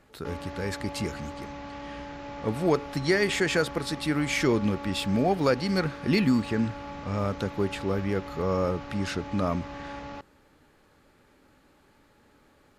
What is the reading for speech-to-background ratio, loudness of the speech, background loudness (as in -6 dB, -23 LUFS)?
12.0 dB, -28.0 LUFS, -40.0 LUFS